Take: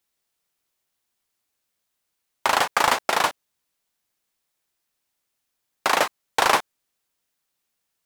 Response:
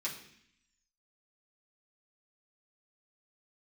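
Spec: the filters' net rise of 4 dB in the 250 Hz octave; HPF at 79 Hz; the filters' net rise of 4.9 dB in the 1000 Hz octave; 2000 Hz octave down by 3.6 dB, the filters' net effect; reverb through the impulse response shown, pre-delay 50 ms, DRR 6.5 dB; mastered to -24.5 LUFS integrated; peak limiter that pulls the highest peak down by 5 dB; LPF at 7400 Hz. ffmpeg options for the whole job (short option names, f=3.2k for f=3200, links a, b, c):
-filter_complex "[0:a]highpass=79,lowpass=7.4k,equalizer=f=250:t=o:g=5,equalizer=f=1k:t=o:g=7.5,equalizer=f=2k:t=o:g=-8,alimiter=limit=-5.5dB:level=0:latency=1,asplit=2[a][b];[1:a]atrim=start_sample=2205,adelay=50[c];[b][c]afir=irnorm=-1:irlink=0,volume=-9dB[d];[a][d]amix=inputs=2:normalize=0,volume=-4dB"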